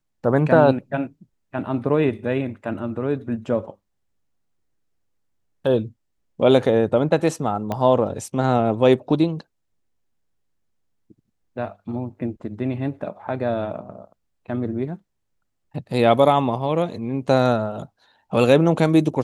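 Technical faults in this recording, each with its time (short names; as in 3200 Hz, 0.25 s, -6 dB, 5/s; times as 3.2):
7.72 pop -13 dBFS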